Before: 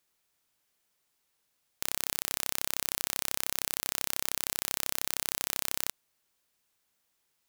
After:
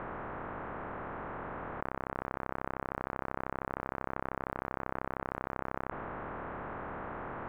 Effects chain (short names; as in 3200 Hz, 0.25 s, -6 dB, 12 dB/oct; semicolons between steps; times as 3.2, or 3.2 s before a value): per-bin compression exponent 0.2; inverse Chebyshev low-pass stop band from 4600 Hz, stop band 60 dB; fast leveller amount 70%; gain +5.5 dB